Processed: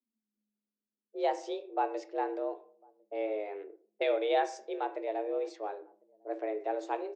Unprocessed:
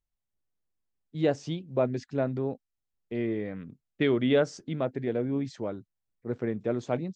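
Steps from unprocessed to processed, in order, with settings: hum notches 50/100 Hz; on a send at -9 dB: reverberation RT60 0.50 s, pre-delay 17 ms; on the sum: frequency shift +210 Hz; echo from a far wall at 180 m, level -28 dB; level-controlled noise filter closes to 500 Hz, open at -26 dBFS; trim -5 dB

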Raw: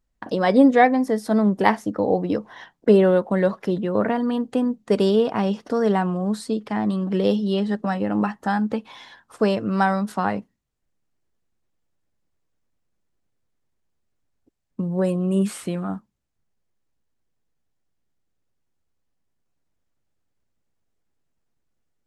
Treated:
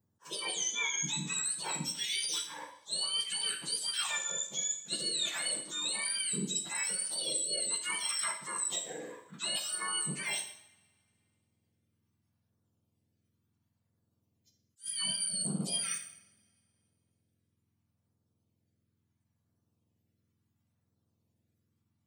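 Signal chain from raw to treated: spectrum inverted on a logarithmic axis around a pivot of 1.3 kHz; reverse; compression 6:1, threshold -33 dBFS, peak gain reduction 17.5 dB; reverse; LFO notch saw down 0.72 Hz 300–3100 Hz; two-slope reverb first 0.65 s, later 2.4 s, from -25 dB, DRR 4 dB; attacks held to a fixed rise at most 330 dB/s

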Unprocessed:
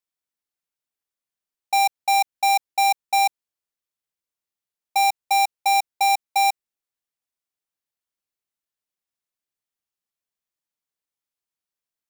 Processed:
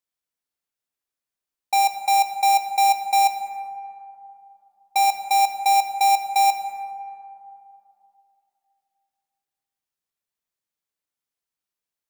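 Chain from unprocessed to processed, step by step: plate-style reverb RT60 2.8 s, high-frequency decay 0.3×, DRR 6 dB

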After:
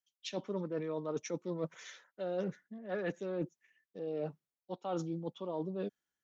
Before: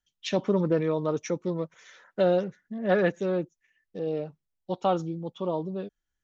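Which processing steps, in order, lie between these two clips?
high-pass 170 Hz; reverse; compression 10:1, threshold -37 dBFS, peak gain reduction 19 dB; reverse; three bands expanded up and down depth 40%; trim +3 dB

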